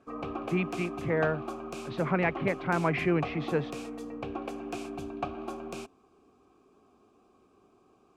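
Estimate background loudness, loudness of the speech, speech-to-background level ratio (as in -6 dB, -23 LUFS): -38.5 LUFS, -30.5 LUFS, 8.0 dB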